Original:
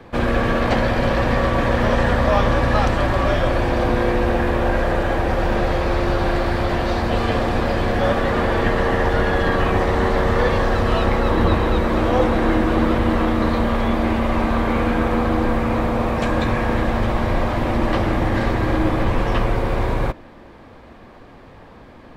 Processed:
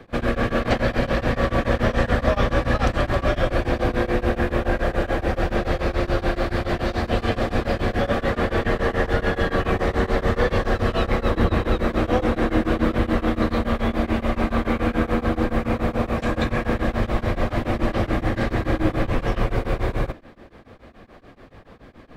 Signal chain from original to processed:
parametric band 920 Hz −7.5 dB 0.27 octaves
tremolo along a rectified sine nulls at 7 Hz

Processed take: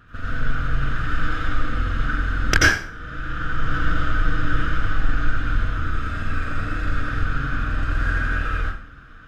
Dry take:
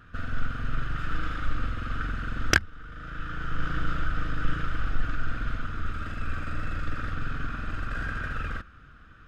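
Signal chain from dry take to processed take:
dense smooth reverb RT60 0.54 s, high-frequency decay 0.8×, pre-delay 75 ms, DRR −5 dB
level +1 dB

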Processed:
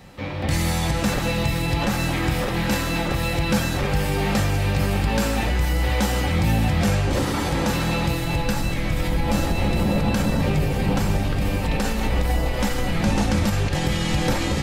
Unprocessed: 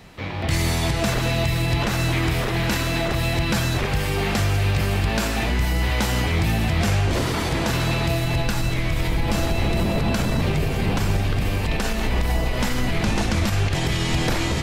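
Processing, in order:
parametric band 2,700 Hz −3 dB 2.7 octaves
on a send: convolution reverb RT60 0.20 s, pre-delay 3 ms, DRR 4 dB

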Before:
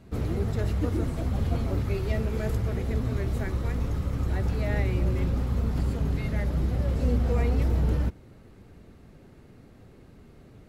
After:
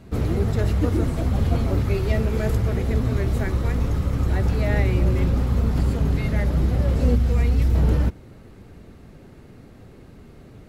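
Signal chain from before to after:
0:07.15–0:07.75: parametric band 640 Hz −8.5 dB 2.6 octaves
level +6 dB

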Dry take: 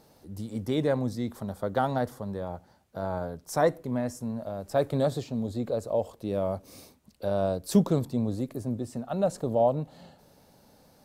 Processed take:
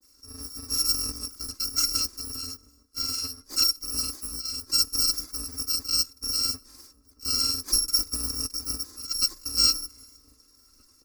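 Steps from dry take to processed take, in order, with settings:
samples in bit-reversed order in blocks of 256 samples
comb filter 3.8 ms, depth 54%
granular cloud, spray 31 ms, pitch spread up and down by 0 semitones
drawn EQ curve 210 Hz 0 dB, 360 Hz +11 dB, 710 Hz −10 dB, 1,200 Hz +3 dB, 3,200 Hz −15 dB, 4,900 Hz +9 dB, 7,300 Hz +1 dB, 13,000 Hz −1 dB
slap from a distant wall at 270 metres, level −20 dB

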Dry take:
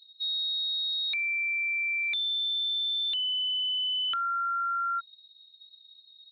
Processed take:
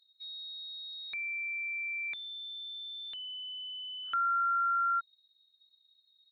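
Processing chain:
high shelf with overshoot 2,300 Hz −9 dB, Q 1.5
level −2 dB

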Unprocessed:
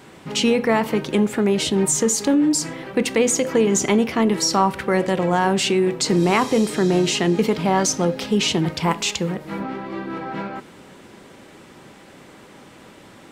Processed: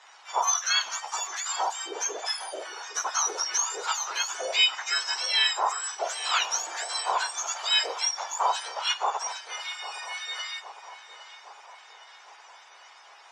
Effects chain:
frequency axis turned over on the octave scale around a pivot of 1,700 Hz
elliptic band-pass filter 790–6,100 Hz, stop band 80 dB
feedback echo with a low-pass in the loop 809 ms, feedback 62%, low-pass 4,200 Hz, level −13.5 dB

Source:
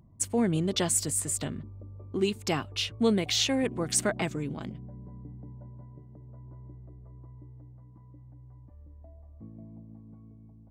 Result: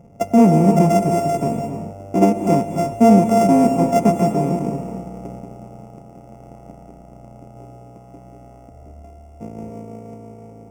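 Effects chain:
samples sorted by size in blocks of 64 samples
notch filter 4,100 Hz, Q 10
reverb whose tail is shaped and stops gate 340 ms rising, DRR 5.5 dB
0:05.39–0:07.57: amplitude modulation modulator 88 Hz, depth 50%
drawn EQ curve 100 Hz 0 dB, 200 Hz +12 dB, 920 Hz +5 dB, 1,600 Hz −15 dB, 2,400 Hz −2 dB, 3,900 Hz −23 dB, 5,700 Hz −2 dB, 11,000 Hz −9 dB
level +5 dB

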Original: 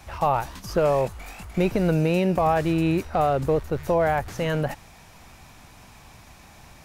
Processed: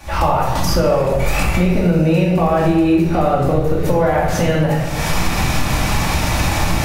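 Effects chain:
camcorder AGC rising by 54 dB per second
rectangular room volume 550 cubic metres, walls mixed, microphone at 2.4 metres
downward compressor 3 to 1, threshold −17 dBFS, peak gain reduction 7 dB
level +4.5 dB

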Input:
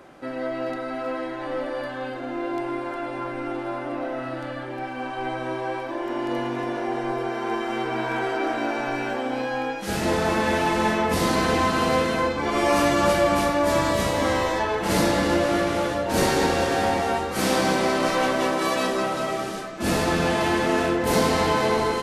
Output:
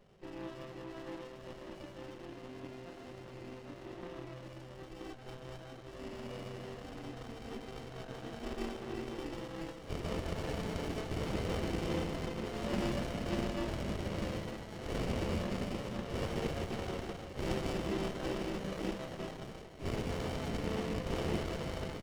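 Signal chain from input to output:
loose part that buzzes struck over −26 dBFS, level −18 dBFS
formant resonators in series i
spectral tilt +2 dB per octave
mains-hum notches 50/100/150/200/250 Hz
double-tracking delay 20 ms −13 dB
feedback echo with a high-pass in the loop 119 ms, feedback 84%, high-pass 490 Hz, level −13 dB
gate on every frequency bin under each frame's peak −10 dB weak
windowed peak hold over 33 samples
level +9 dB

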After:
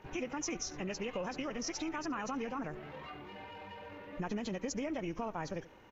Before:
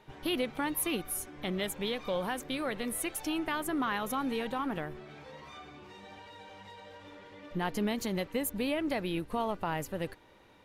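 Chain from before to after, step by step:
hearing-aid frequency compression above 1,700 Hz 1.5 to 1
on a send: single-tap delay 139 ms −21.5 dB
on the sum: downward compressor 2.5 to 1, threshold −40 dBFS, peak gain reduction 9 dB
tempo change 1.8×
level +2.5 dB
MP2 96 kbit/s 48,000 Hz

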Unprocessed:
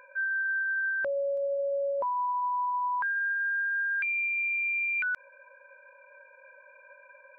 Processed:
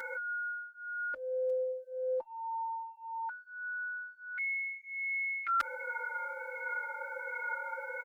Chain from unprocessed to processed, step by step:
high-shelf EQ 2,300 Hz +10 dB
comb filter 3.1 ms, depth 68%
compressor whose output falls as the input rises −36 dBFS, ratio −1
wrong playback speed 48 kHz file played as 44.1 kHz
barber-pole flanger 5.4 ms −1.4 Hz
level +2 dB

